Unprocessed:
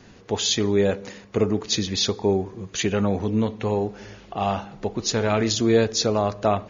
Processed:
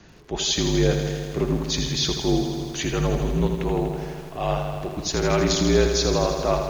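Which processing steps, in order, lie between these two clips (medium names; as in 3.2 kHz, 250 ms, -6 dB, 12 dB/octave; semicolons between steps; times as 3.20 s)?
transient shaper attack -5 dB, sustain -1 dB; frequency shift -51 Hz; bit-crushed delay 81 ms, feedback 80%, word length 8-bit, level -7 dB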